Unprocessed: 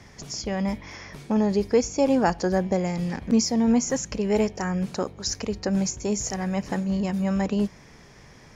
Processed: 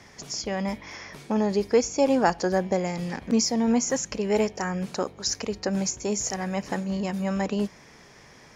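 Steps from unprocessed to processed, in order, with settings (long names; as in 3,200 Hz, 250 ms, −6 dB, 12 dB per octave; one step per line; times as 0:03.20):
low-shelf EQ 180 Hz −10 dB
harmonic generator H 3 −30 dB, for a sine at −9.5 dBFS
level +2 dB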